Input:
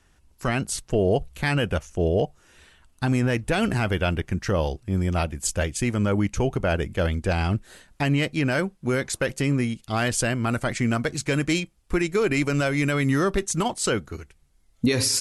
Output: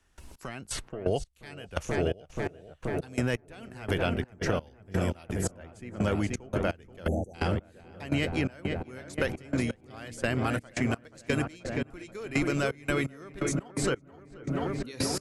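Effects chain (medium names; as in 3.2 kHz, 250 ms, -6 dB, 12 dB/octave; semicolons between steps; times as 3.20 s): peaking EQ 150 Hz -3.5 dB 1.3 oct; filtered feedback delay 481 ms, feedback 81%, low-pass 2 kHz, level -7 dB; spectral selection erased 7.08–7.34 s, 880–5800 Hz; trance gate ".x..x.x...xx" 85 bpm -24 dB; three bands compressed up and down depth 70%; trim -4 dB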